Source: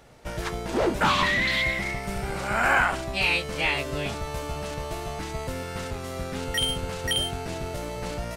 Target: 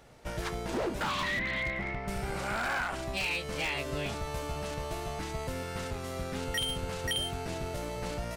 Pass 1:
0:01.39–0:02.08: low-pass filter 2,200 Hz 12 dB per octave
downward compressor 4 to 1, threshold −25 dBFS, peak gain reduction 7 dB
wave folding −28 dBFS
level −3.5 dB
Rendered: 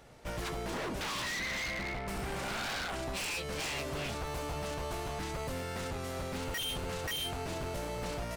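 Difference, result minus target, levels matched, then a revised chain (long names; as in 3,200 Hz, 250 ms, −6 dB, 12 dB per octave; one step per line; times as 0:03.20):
wave folding: distortion +14 dB
0:01.39–0:02.08: low-pass filter 2,200 Hz 12 dB per octave
downward compressor 4 to 1, threshold −25 dBFS, peak gain reduction 7 dB
wave folding −22 dBFS
level −3.5 dB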